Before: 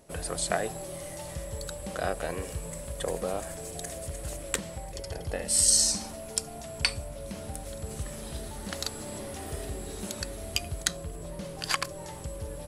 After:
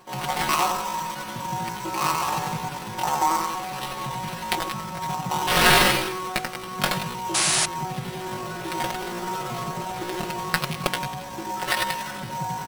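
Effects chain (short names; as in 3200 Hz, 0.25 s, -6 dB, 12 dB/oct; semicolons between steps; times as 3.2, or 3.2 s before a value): on a send: feedback echo 90 ms, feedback 43%, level -3.5 dB; on the sum: dynamic EQ 510 Hz, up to +3 dB, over -41 dBFS, Q 1.3; spring tank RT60 2.9 s, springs 31/43/50 ms, chirp 65 ms, DRR 11.5 dB; reverse; upward compressor, threshold -34 dBFS; reverse; HPF 65 Hz 24 dB/oct; sample-rate reducer 4100 Hz, jitter 20%; pitch shift +9 st; comb 5.5 ms, depth 80%; painted sound noise, 7.34–7.66, 570–11000 Hz -24 dBFS; gain +2.5 dB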